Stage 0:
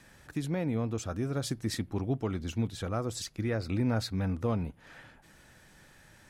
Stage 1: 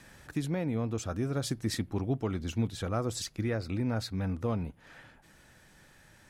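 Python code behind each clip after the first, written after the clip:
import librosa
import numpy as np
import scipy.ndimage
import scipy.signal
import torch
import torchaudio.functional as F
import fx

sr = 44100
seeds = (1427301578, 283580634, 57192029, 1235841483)

y = fx.rider(x, sr, range_db=3, speed_s=0.5)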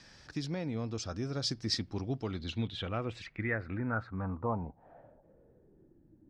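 y = fx.filter_sweep_lowpass(x, sr, from_hz=5100.0, to_hz=310.0, start_s=2.14, end_s=6.06, q=5.1)
y = y * librosa.db_to_amplitude(-4.5)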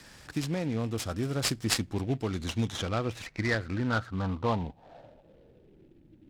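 y = fx.noise_mod_delay(x, sr, seeds[0], noise_hz=2300.0, depth_ms=0.032)
y = y * librosa.db_to_amplitude(5.0)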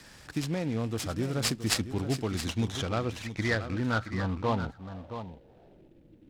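y = x + 10.0 ** (-10.5 / 20.0) * np.pad(x, (int(672 * sr / 1000.0), 0))[:len(x)]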